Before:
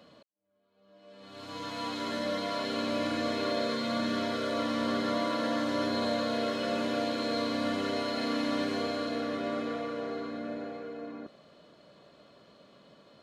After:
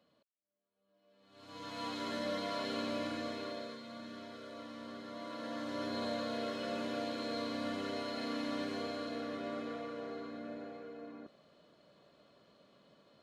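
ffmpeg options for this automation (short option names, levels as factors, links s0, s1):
-af "volume=1.68,afade=t=in:st=1.27:d=0.57:silence=0.266073,afade=t=out:st=2.71:d=1.11:silence=0.251189,afade=t=in:st=5.1:d=0.91:silence=0.334965"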